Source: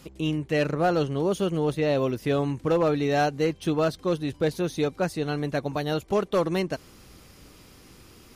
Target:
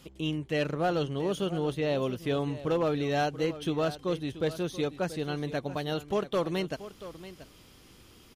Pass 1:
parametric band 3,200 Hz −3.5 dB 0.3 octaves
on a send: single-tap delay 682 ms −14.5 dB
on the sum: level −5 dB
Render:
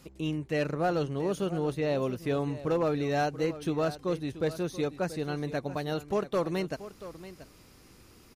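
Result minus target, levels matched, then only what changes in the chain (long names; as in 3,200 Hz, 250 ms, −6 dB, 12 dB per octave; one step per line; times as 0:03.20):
4,000 Hz band −4.5 dB
change: parametric band 3,200 Hz +7 dB 0.3 octaves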